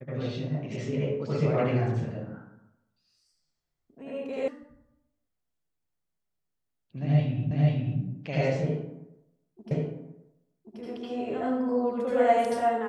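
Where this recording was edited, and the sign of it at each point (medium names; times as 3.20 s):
4.48 s: sound stops dead
7.51 s: repeat of the last 0.49 s
9.71 s: repeat of the last 1.08 s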